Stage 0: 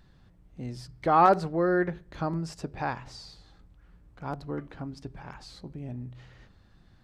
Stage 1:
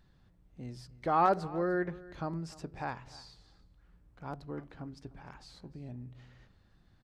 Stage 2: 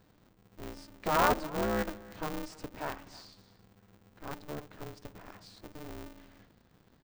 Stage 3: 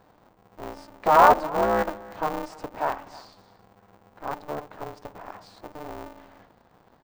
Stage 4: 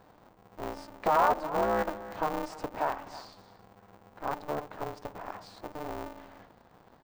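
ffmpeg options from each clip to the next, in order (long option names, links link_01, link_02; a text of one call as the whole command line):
ffmpeg -i in.wav -af "aecho=1:1:299:0.1,volume=-6.5dB" out.wav
ffmpeg -i in.wav -af "aeval=exprs='val(0)*sgn(sin(2*PI*150*n/s))':channel_layout=same" out.wav
ffmpeg -i in.wav -af "equalizer=frequency=820:width_type=o:width=1.9:gain=14" out.wav
ffmpeg -i in.wav -af "acompressor=threshold=-28dB:ratio=2" out.wav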